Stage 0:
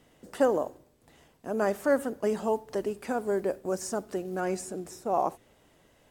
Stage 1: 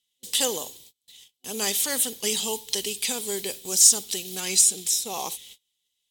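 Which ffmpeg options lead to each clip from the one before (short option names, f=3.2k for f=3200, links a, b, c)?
-af "agate=range=-32dB:threshold=-56dB:ratio=16:detection=peak,aexciter=amount=14.9:drive=6.5:freq=2.3k,superequalizer=6b=0.562:8b=0.398:13b=2.24,volume=-4dB"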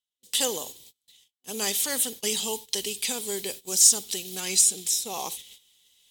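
-af "agate=range=-14dB:threshold=-37dB:ratio=16:detection=peak,areverse,acompressor=mode=upward:threshold=-36dB:ratio=2.5,areverse,volume=-1.5dB"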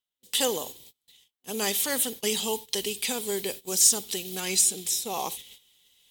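-af "equalizer=f=6.7k:w=0.61:g=-6,volume=3dB"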